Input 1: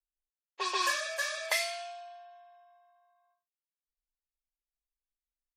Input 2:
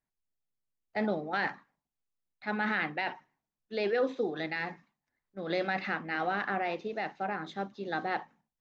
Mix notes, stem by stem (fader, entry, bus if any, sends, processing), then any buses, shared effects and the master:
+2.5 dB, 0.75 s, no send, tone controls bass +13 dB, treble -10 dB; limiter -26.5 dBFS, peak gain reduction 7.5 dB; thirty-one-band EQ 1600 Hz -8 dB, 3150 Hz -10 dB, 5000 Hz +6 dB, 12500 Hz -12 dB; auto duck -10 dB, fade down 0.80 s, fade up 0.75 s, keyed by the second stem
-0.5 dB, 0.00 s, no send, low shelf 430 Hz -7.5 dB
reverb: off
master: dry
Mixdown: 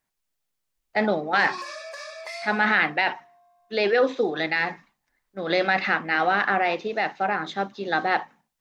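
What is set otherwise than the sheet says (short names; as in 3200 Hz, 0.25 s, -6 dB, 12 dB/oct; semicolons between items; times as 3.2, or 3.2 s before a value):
stem 1 +2.5 dB -> +11.5 dB; stem 2 -0.5 dB -> +11.5 dB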